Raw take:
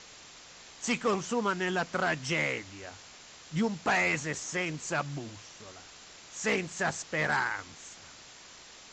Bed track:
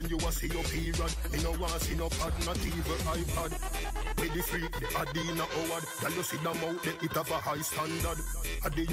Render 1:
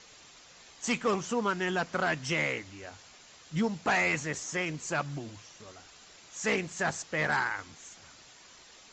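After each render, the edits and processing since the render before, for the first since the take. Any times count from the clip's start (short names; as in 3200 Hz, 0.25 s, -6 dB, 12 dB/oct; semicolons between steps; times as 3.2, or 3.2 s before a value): denoiser 6 dB, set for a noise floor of -52 dBFS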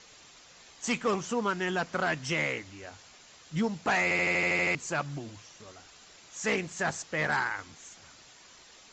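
4.03 stutter in place 0.08 s, 9 plays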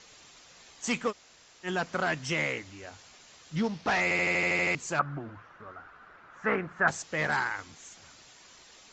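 1.1–1.66 room tone, crossfade 0.06 s; 3.56–4.01 CVSD 32 kbps; 4.99–6.88 synth low-pass 1400 Hz, resonance Q 4.1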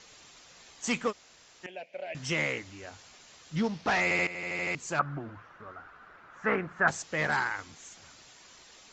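1.66–2.15 double band-pass 1200 Hz, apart 2 oct; 4.27–5.05 fade in, from -14.5 dB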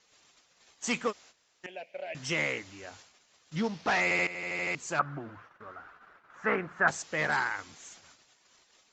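gate -52 dBFS, range -13 dB; low shelf 150 Hz -6.5 dB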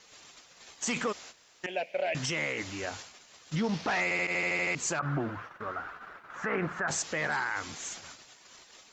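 in parallel at +0.5 dB: negative-ratio compressor -38 dBFS, ratio -1; on the sum: limiter -21.5 dBFS, peak gain reduction 10 dB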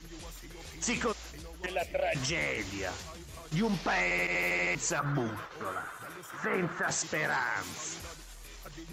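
add bed track -14.5 dB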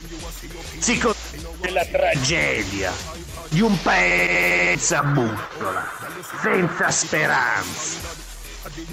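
gain +12 dB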